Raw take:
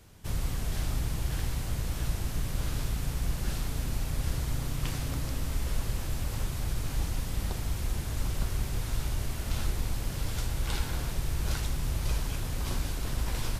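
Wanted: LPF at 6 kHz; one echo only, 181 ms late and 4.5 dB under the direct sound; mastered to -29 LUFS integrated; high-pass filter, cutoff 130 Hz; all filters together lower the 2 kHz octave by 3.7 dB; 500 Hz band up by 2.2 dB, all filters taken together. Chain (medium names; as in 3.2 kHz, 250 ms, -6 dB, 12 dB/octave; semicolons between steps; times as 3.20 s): high-pass 130 Hz; low-pass 6 kHz; peaking EQ 500 Hz +3 dB; peaking EQ 2 kHz -5 dB; delay 181 ms -4.5 dB; trim +9.5 dB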